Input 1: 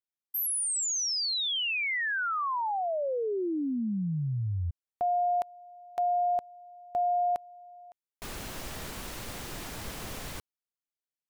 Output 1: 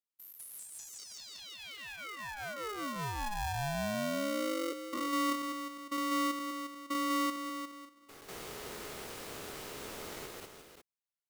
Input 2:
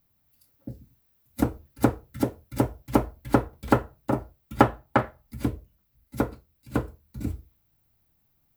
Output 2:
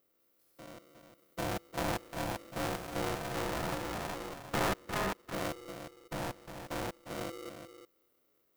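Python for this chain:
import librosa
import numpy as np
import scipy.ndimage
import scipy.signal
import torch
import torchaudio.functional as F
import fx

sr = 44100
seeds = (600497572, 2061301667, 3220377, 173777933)

y = fx.spec_steps(x, sr, hold_ms=200)
y = y + 10.0 ** (-8.5 / 20.0) * np.pad(y, (int(355 * sr / 1000.0), 0))[:len(y)]
y = y * np.sign(np.sin(2.0 * np.pi * 420.0 * np.arange(len(y)) / sr))
y = y * librosa.db_to_amplitude(-4.0)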